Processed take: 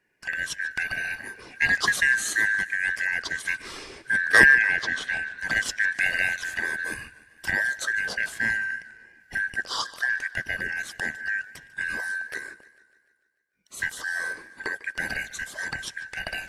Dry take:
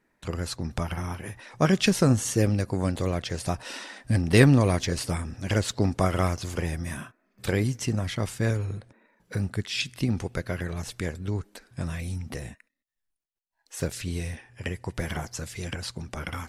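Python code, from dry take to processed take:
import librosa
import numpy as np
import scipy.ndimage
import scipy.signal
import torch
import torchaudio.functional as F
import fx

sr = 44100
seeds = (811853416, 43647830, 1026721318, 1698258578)

p1 = fx.band_shuffle(x, sr, order='2143')
p2 = fx.level_steps(p1, sr, step_db=17)
p3 = p1 + (p2 * librosa.db_to_amplitude(-2.5))
p4 = fx.lowpass(p3, sr, hz=4600.0, slope=12, at=(4.49, 5.38))
p5 = fx.echo_warbled(p4, sr, ms=148, feedback_pct=58, rate_hz=2.8, cents=93, wet_db=-19.0)
y = p5 * librosa.db_to_amplitude(-2.5)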